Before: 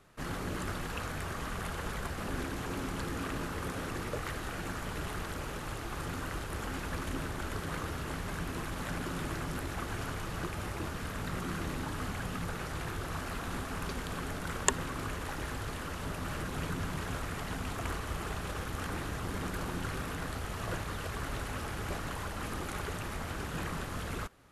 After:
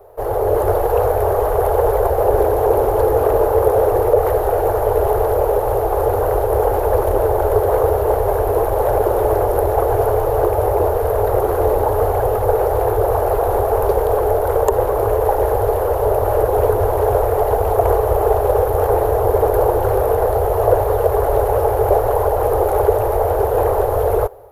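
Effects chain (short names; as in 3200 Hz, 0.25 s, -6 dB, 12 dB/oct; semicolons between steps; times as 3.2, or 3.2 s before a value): EQ curve 110 Hz 0 dB, 160 Hz -26 dB, 290 Hz -13 dB, 430 Hz +15 dB, 830 Hz +10 dB, 1200 Hz -7 dB, 2600 Hz -18 dB, 8100 Hz -18 dB, 14000 Hz +10 dB; AGC gain up to 4.5 dB; maximiser +14 dB; gain -1 dB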